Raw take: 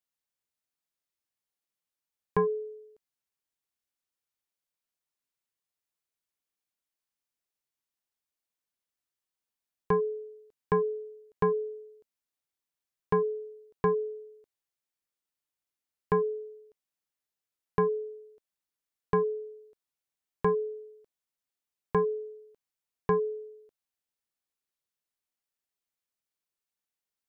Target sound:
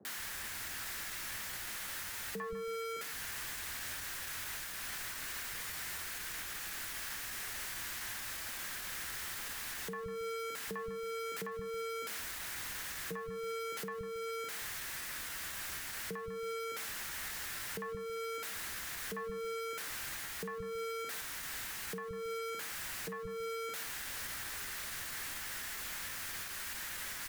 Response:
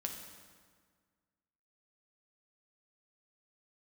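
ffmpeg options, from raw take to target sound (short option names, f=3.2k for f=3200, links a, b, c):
-filter_complex "[0:a]aeval=exprs='val(0)+0.5*0.0158*sgn(val(0))':c=same,acrossover=split=140|500[a][b][c];[a]acontrast=79[d];[d][b][c]amix=inputs=3:normalize=0,asoftclip=type=tanh:threshold=-14.5dB,asetrate=46722,aresample=44100,atempo=0.943874,acrusher=bits=8:mix=0:aa=0.5,acrossover=split=150|500[e][f][g];[g]adelay=50[h];[e]adelay=170[i];[i][f][h]amix=inputs=3:normalize=0,acompressor=threshold=-37dB:ratio=5,equalizer=f=1.7k:w=1.6:g=10,asplit=2[j][k];[k]aecho=0:1:150:0.133[l];[j][l]amix=inputs=2:normalize=0,alimiter=level_in=10dB:limit=-24dB:level=0:latency=1:release=361,volume=-10dB,volume=2.5dB"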